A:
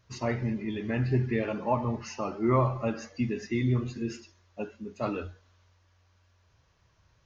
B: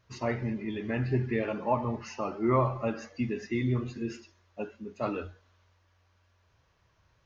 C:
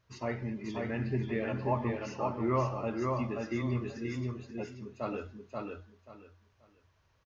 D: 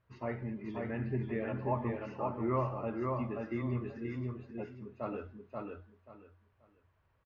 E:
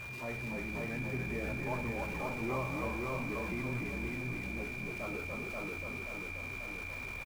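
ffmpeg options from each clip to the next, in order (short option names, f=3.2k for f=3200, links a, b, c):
-af "bass=f=250:g=-3,treble=f=4k:g=-5"
-af "aecho=1:1:533|1066|1599:0.708|0.156|0.0343,volume=-4.5dB"
-af "lowpass=2.2k,volume=-2.5dB"
-filter_complex "[0:a]aeval=exprs='val(0)+0.5*0.0158*sgn(val(0))':c=same,aeval=exprs='val(0)+0.0158*sin(2*PI*2400*n/s)':c=same,asplit=7[a][b][c][d][e][f][g];[b]adelay=287,afreqshift=-60,volume=-3dB[h];[c]adelay=574,afreqshift=-120,volume=-9.7dB[i];[d]adelay=861,afreqshift=-180,volume=-16.5dB[j];[e]adelay=1148,afreqshift=-240,volume=-23.2dB[k];[f]adelay=1435,afreqshift=-300,volume=-30dB[l];[g]adelay=1722,afreqshift=-360,volume=-36.7dB[m];[a][h][i][j][k][l][m]amix=inputs=7:normalize=0,volume=-7dB"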